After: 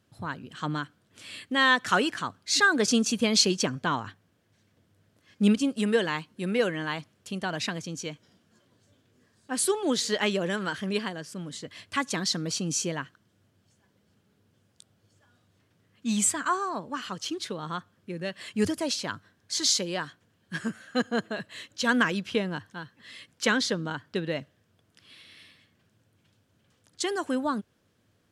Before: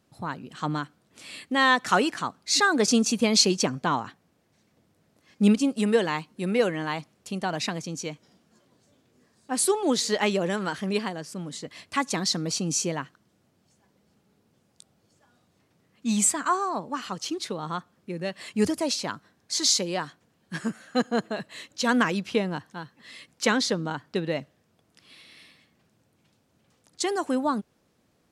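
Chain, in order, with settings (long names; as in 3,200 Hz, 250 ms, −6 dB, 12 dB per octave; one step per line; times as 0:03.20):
thirty-one-band graphic EQ 100 Hz +11 dB, 800 Hz −4 dB, 1,600 Hz +5 dB, 3,150 Hz +5 dB
level −2.5 dB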